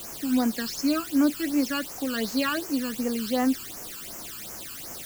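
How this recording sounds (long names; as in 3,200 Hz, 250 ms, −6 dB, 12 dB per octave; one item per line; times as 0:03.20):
a quantiser's noise floor 6 bits, dither triangular
phaser sweep stages 12, 2.7 Hz, lowest notch 620–3,800 Hz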